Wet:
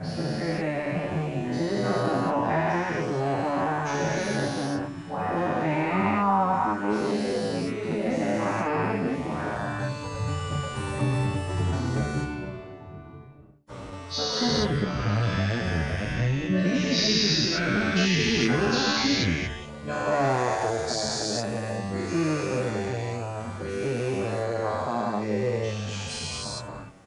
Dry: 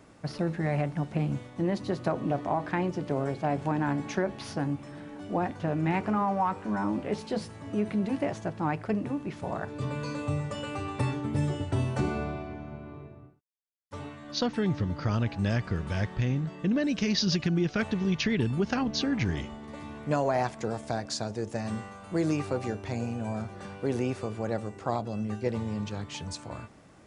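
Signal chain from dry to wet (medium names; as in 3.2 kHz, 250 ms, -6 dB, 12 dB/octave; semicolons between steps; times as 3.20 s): every event in the spectrogram widened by 480 ms; de-hum 73.37 Hz, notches 12; endless flanger 8.8 ms -0.77 Hz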